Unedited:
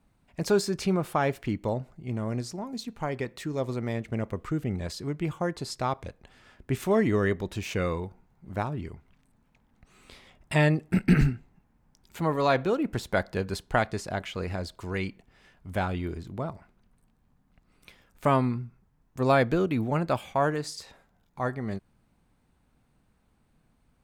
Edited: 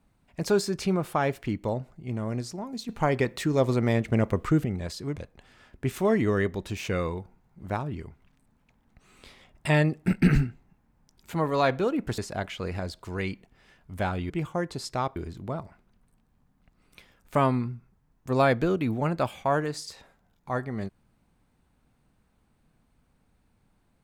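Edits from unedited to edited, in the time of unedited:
0:02.89–0:04.65: clip gain +7 dB
0:05.16–0:06.02: move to 0:16.06
0:13.04–0:13.94: remove

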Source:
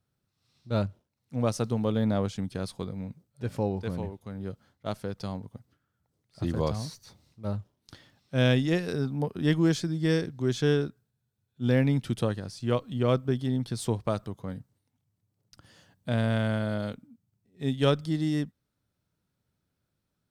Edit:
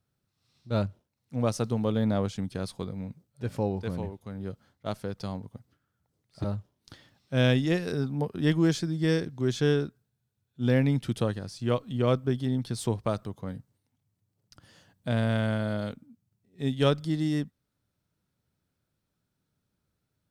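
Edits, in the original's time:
0:06.44–0:07.45: remove

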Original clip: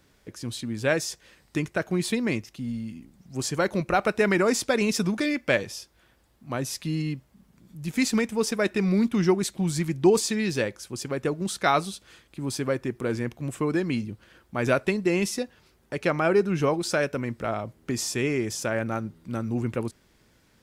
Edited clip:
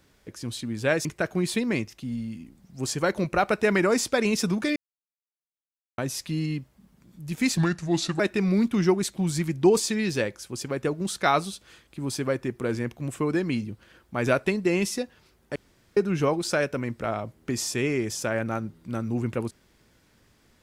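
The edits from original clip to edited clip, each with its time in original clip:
0:01.05–0:01.61: remove
0:05.32–0:06.54: silence
0:08.13–0:08.60: play speed 75%
0:15.96–0:16.37: fill with room tone

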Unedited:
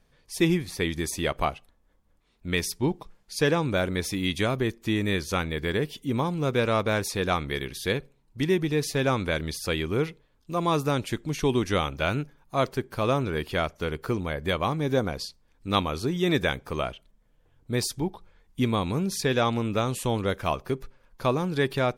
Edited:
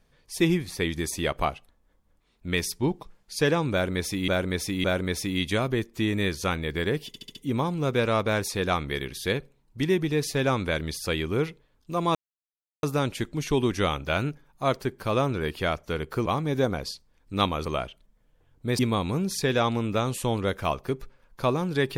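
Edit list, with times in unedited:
0:03.72–0:04.28: repeat, 3 plays
0:05.95: stutter 0.07 s, 5 plays
0:10.75: splice in silence 0.68 s
0:14.18–0:14.60: remove
0:15.99–0:16.70: remove
0:17.84–0:18.60: remove

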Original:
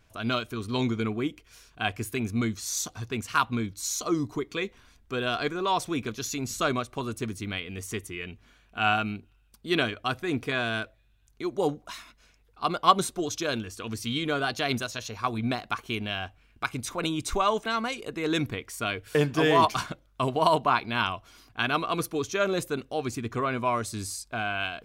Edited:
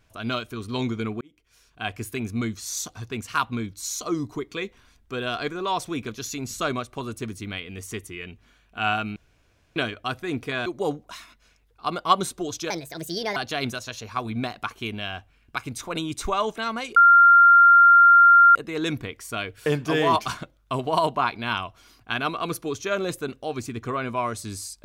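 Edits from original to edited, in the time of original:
0:01.21–0:01.99: fade in
0:09.16–0:09.76: fill with room tone
0:10.66–0:11.44: remove
0:13.48–0:14.44: play speed 145%
0:18.04: insert tone 1,390 Hz −9.5 dBFS 1.59 s

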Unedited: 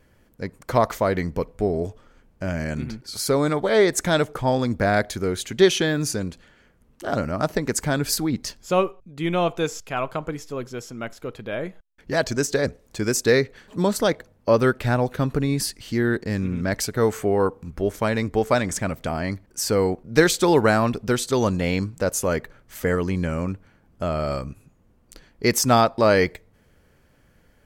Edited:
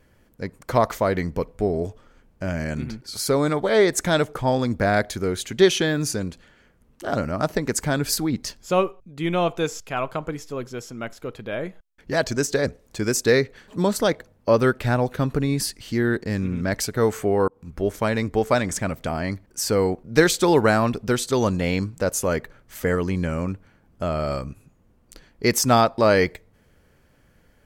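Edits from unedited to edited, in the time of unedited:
0:17.48–0:17.87: fade in equal-power

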